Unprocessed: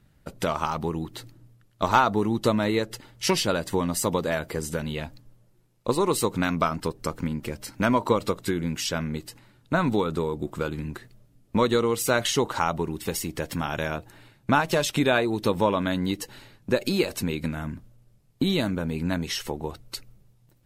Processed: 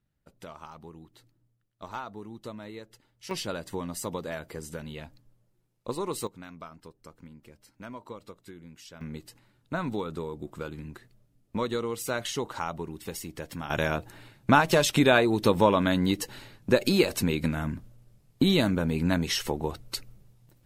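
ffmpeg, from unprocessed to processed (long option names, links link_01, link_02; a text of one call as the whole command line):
ffmpeg -i in.wav -af "asetnsamples=nb_out_samples=441:pad=0,asendcmd='3.31 volume volume -9dB;6.27 volume volume -20dB;9.01 volume volume -8dB;13.7 volume volume 1.5dB',volume=-18dB" out.wav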